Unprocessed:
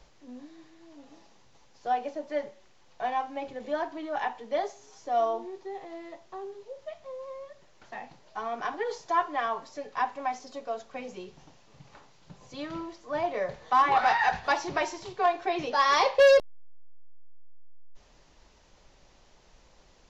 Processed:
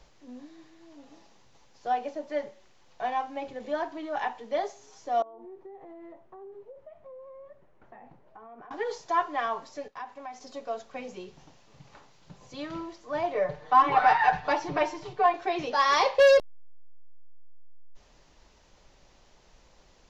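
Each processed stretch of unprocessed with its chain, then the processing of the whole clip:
5.22–8.71 compressor 12:1, threshold -41 dBFS + EQ curve 400 Hz 0 dB, 1300 Hz -5 dB, 2200 Hz -10 dB, 4700 Hz -25 dB
9.88–10.41 expander -43 dBFS + compressor 2:1, threshold -44 dBFS
13.34–15.34 LPF 2100 Hz 6 dB/oct + comb 6.7 ms, depth 96%
whole clip: dry

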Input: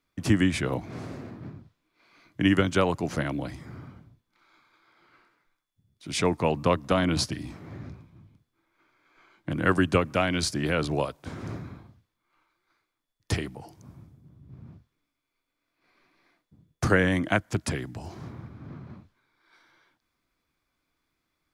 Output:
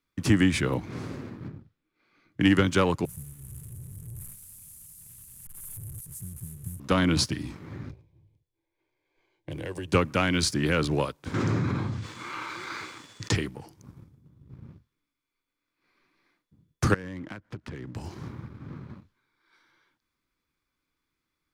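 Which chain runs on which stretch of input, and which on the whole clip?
1.48–2.41 high shelf 2700 Hz -9 dB + notch 1000 Hz, Q 6
3.05–6.8 delta modulation 64 kbps, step -25.5 dBFS + inverse Chebyshev band-stop 490–3100 Hz, stop band 70 dB + low shelf 110 Hz -11.5 dB
7.91–9.93 compressor, threshold -26 dBFS + fixed phaser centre 540 Hz, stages 4 + mismatched tape noise reduction decoder only
11.34–13.35 elliptic band-pass 100–7700 Hz + fast leveller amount 70%
16.94–17.95 switching dead time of 0.066 ms + compressor 12:1, threshold -34 dBFS + tape spacing loss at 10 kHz 22 dB
whole clip: sample leveller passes 1; bell 680 Hz -9 dB 0.37 oct; gain -1.5 dB

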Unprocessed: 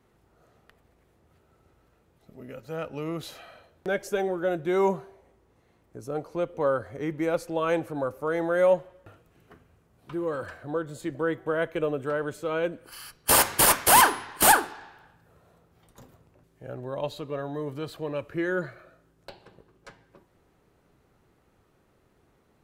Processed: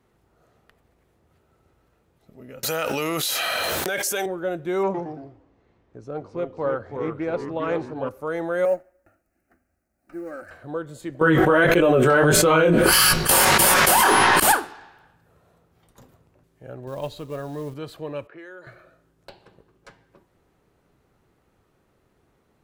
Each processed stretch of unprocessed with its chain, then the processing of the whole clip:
2.63–4.26 tilt +4 dB/oct + fast leveller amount 100%
4.83–8.09 echoes that change speed 0.112 s, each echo -2 st, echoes 3, each echo -6 dB + air absorption 120 m + Doppler distortion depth 0.12 ms
8.65–10.51 G.711 law mismatch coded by A + bell 530 Hz +3.5 dB 0.26 oct + fixed phaser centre 680 Hz, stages 8
11.21–14.4 comb 5.4 ms, depth 43% + chorus 1.6 Hz, delay 16.5 ms, depth 6.5 ms + fast leveller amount 100%
16.87–17.74 low shelf 100 Hz +9 dB + companded quantiser 6-bit
18.27–18.67 HPF 420 Hz + low-pass opened by the level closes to 1900 Hz, open at -29.5 dBFS + compressor 4:1, threshold -40 dBFS
whole clip: dry

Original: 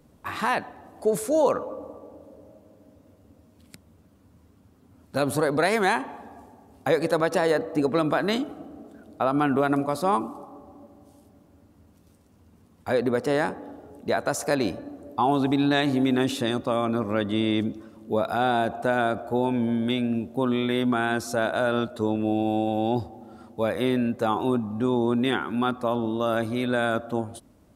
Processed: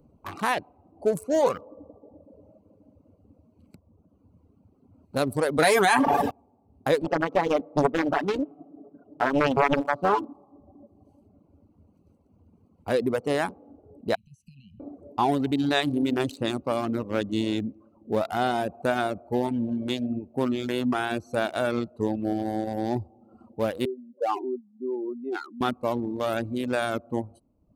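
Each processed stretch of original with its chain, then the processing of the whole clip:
5.58–6.31 comb 6.9 ms, depth 63% + gate -33 dBFS, range -19 dB + fast leveller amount 100%
7.02–10.33 BPF 140–2500 Hz + comb 7 ms, depth 66% + Doppler distortion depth 0.89 ms
14.15–14.8 Chebyshev band-stop 210–2900 Hz, order 5 + band shelf 2100 Hz +14 dB 1.3 oct + compressor 12:1, threshold -42 dBFS
23.85–25.61 spectral contrast raised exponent 2.4 + HPF 350 Hz 24 dB/oct
whole clip: Wiener smoothing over 25 samples; reverb removal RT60 0.89 s; high shelf 4500 Hz +8 dB

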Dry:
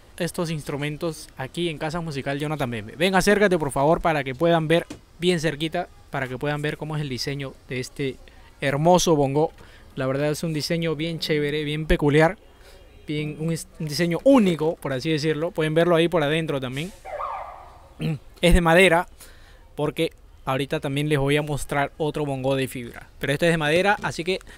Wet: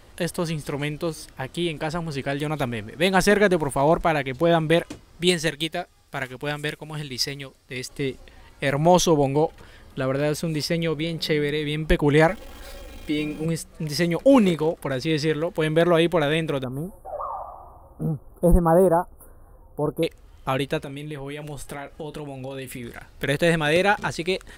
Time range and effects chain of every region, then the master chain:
5.27–7.89 high shelf 2300 Hz +9 dB + upward expander, over -36 dBFS
12.28–13.46 zero-crossing step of -41.5 dBFS + comb 3.7 ms, depth 72%
16.64–20.03 inverse Chebyshev band-stop 2000–6900 Hz + bell 3100 Hz +8 dB 0.36 oct
20.83–22.83 compressor 8:1, threshold -30 dBFS + doubler 32 ms -13 dB
whole clip: dry

